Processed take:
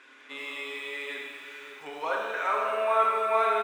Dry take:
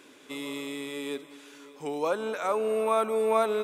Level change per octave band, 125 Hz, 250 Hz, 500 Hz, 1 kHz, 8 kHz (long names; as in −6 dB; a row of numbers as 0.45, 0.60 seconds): below −15 dB, −14.0 dB, −3.0 dB, +4.0 dB, −8.0 dB